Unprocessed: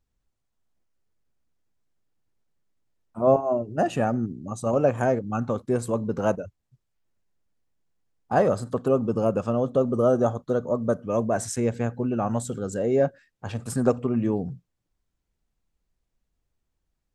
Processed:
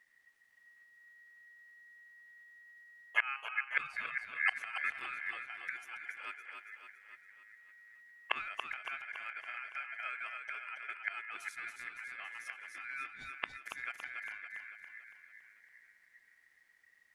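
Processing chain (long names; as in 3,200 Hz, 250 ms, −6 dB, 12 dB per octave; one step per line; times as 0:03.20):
gate with flip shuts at −24 dBFS, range −29 dB
echo with a time of its own for lows and highs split 370 Hz, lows 400 ms, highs 281 ms, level −5 dB
ring modulation 1,900 Hz
level +9.5 dB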